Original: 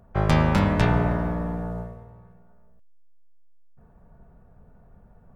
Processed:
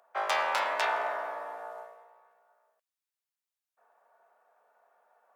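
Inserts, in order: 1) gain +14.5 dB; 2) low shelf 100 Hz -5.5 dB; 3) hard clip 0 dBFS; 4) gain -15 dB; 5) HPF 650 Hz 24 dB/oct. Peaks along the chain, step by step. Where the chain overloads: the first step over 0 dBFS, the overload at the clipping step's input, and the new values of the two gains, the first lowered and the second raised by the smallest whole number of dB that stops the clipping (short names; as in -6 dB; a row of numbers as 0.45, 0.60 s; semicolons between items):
+8.0, +6.0, 0.0, -15.0, -14.5 dBFS; step 1, 6.0 dB; step 1 +8.5 dB, step 4 -9 dB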